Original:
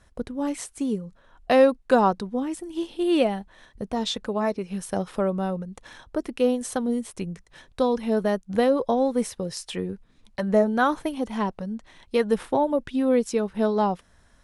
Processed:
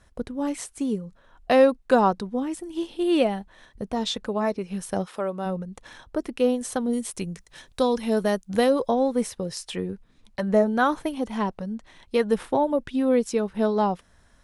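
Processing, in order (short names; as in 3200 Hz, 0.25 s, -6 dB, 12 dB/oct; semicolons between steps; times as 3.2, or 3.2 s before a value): 5.05–5.45 HPF 830 Hz -> 330 Hz 6 dB/oct; 6.93–8.89 high shelf 3400 Hz +9 dB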